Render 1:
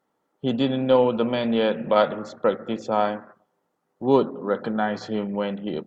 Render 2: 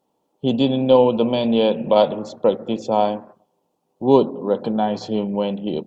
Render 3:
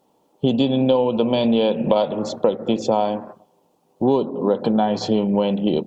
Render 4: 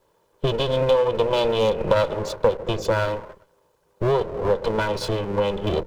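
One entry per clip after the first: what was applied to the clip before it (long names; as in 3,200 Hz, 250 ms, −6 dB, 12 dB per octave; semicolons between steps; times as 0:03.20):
flat-topped bell 1,600 Hz −14 dB 1 octave; level +4.5 dB
downward compressor 6 to 1, threshold −23 dBFS, peak gain reduction 14.5 dB; level +8 dB
lower of the sound and its delayed copy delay 2 ms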